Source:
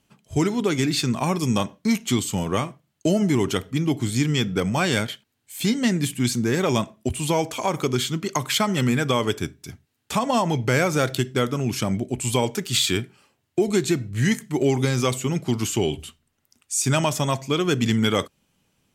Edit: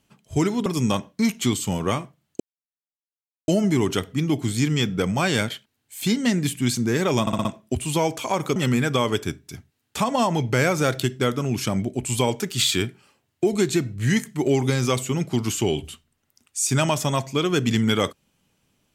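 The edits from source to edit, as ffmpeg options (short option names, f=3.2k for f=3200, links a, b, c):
-filter_complex "[0:a]asplit=8[a][b][c][d][e][f][g][h];[a]atrim=end=0.662[i];[b]atrim=start=1.318:end=3.06,asetpts=PTS-STARTPTS,afade=t=out:st=1.738:d=0.004:c=hsin,apad=pad_dur=1.08[j];[c]atrim=start=3.06:end=6.852,asetpts=PTS-STARTPTS,afade=t=in:d=0.004:c=hsin[k];[d]atrim=start=6.788:end=6.852[l];[e]atrim=start=6.788:end=6.852[m];[f]atrim=start=6.788:end=6.852[n];[g]atrim=start=6.788:end=7.902[o];[h]atrim=start=8.708[p];[j][k]concat=n=2:v=0:a=1[q];[i][q]acrossfade=d=0.004:c1=hsin:c2=hsin[r];[r][l]acrossfade=d=0.004:c1=hsin:c2=hsin[s];[s][m]acrossfade=d=0.004:c1=hsin:c2=hsin[t];[t][n]acrossfade=d=0.004:c1=hsin:c2=hsin[u];[u][o]acrossfade=d=0.004:c1=hsin:c2=hsin[v];[v][p]acrossfade=d=0.004:c1=hsin:c2=hsin"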